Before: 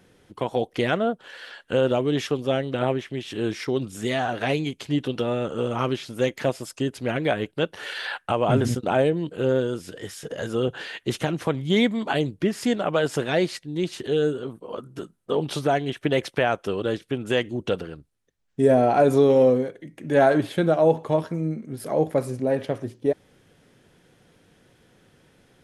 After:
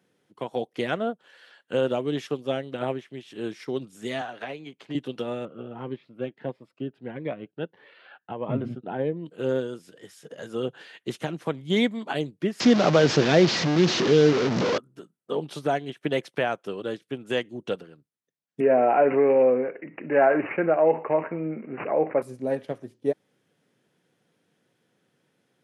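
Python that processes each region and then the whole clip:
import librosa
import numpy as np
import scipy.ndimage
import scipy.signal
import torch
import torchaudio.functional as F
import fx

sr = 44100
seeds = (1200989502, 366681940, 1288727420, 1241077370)

y = fx.chain(x, sr, fx.lowpass(hz=2100.0, slope=6),
    fx.low_shelf(hz=370.0, db=-10.5),
    fx.band_squash(depth_pct=100), at=(4.21, 4.95))
y = fx.chain(y, sr, fx.air_absorb(metres=460.0),
    fx.notch_cascade(direction='rising', hz=1.6), at=(5.45, 9.26))
y = fx.chain(y, sr, fx.delta_mod(bps=32000, step_db=-23.0),
    fx.low_shelf(hz=440.0, db=7.5),
    fx.env_flatten(amount_pct=50), at=(12.6, 14.78))
y = fx.chain(y, sr, fx.bass_treble(bass_db=-14, treble_db=3),
    fx.resample_bad(factor=8, down='none', up='filtered'),
    fx.env_flatten(amount_pct=50), at=(18.6, 22.22))
y = scipy.signal.sosfilt(scipy.signal.butter(4, 130.0, 'highpass', fs=sr, output='sos'), y)
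y = fx.upward_expand(y, sr, threshold_db=-37.0, expansion=1.5)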